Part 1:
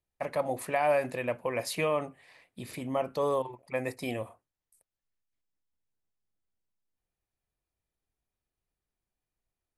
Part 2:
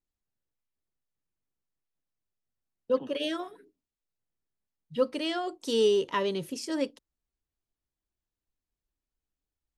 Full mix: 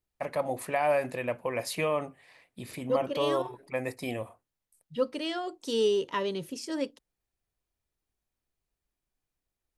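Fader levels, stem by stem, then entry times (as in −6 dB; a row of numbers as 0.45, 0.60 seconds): 0.0, −2.0 decibels; 0.00, 0.00 seconds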